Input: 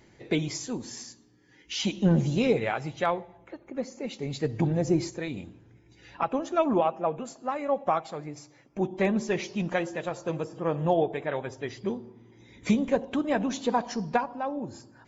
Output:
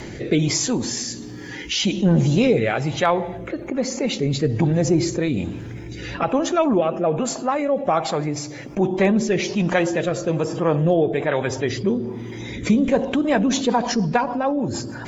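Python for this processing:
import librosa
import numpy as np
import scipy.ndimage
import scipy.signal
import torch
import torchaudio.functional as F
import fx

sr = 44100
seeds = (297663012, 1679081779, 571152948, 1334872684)

y = fx.rotary_switch(x, sr, hz=1.2, then_hz=6.7, switch_at_s=12.82)
y = fx.env_flatten(y, sr, amount_pct=50)
y = y * librosa.db_to_amplitude(5.5)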